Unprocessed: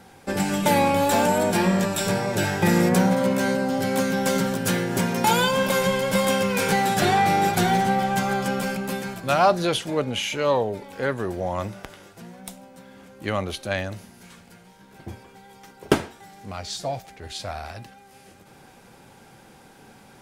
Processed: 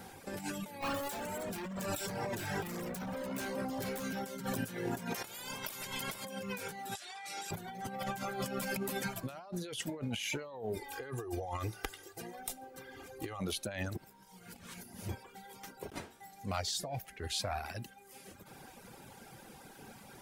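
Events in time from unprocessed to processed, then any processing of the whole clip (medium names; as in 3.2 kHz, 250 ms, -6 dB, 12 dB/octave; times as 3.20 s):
0.81–4.24 s: overload inside the chain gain 22.5 dB
5.14–6.24 s: spectral peaks clipped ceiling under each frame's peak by 19 dB
6.95–7.51 s: frequency weighting ITU-R 468
10.76–13.40 s: comb 2.5 ms, depth 85%
13.95–15.09 s: reverse
whole clip: reverb removal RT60 1.1 s; treble shelf 12 kHz +11.5 dB; compressor with a negative ratio -33 dBFS, ratio -1; trim -7.5 dB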